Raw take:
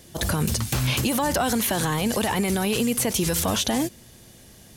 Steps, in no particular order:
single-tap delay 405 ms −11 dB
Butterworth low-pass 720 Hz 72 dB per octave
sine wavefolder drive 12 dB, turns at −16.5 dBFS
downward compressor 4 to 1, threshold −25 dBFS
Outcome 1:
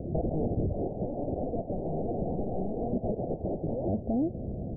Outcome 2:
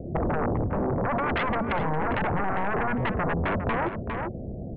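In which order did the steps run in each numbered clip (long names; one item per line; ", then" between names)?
single-tap delay, then sine wavefolder, then downward compressor, then Butterworth low-pass
Butterworth low-pass, then sine wavefolder, then single-tap delay, then downward compressor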